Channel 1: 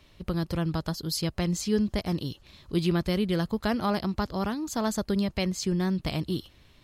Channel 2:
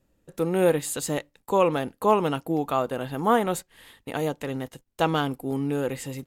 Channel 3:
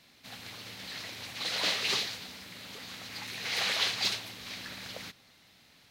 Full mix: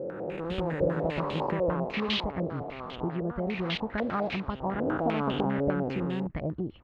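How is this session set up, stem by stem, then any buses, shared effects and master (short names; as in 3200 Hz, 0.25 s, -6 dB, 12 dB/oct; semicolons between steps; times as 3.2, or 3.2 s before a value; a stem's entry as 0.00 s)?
+2.0 dB, 0.30 s, no send, LPF 1000 Hz 6 dB/oct; compressor, threshold -32 dBFS, peak gain reduction 11 dB
1.69 s -2.5 dB -> 1.94 s -12.5 dB -> 4.57 s -12.5 dB -> 4.88 s 0 dB, 0.00 s, no send, time blur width 0.968 s
-5.5 dB, 0.20 s, no send, step gate "..xxx..xxxxx..." 147 bpm -24 dB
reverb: off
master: stepped low-pass 10 Hz 550–3100 Hz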